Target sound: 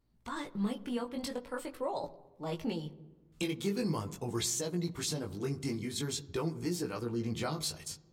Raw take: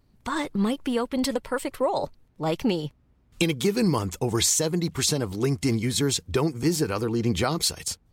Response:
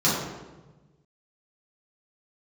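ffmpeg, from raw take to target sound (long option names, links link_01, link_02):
-filter_complex "[0:a]flanger=delay=16.5:depth=4.5:speed=0.44,asplit=2[link_01][link_02];[1:a]atrim=start_sample=2205,lowpass=5300[link_03];[link_02][link_03]afir=irnorm=-1:irlink=0,volume=-31.5dB[link_04];[link_01][link_04]amix=inputs=2:normalize=0,volume=-8.5dB"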